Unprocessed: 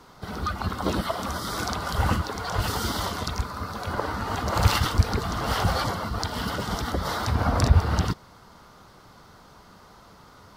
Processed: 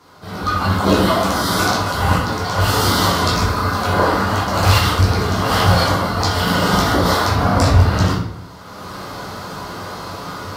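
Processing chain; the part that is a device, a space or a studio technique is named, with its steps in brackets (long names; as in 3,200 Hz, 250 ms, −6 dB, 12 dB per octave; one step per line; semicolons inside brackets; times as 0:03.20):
far laptop microphone (convolution reverb RT60 0.75 s, pre-delay 9 ms, DRR −5 dB; high-pass filter 130 Hz 6 dB per octave; automatic gain control gain up to 16.5 dB)
level −1 dB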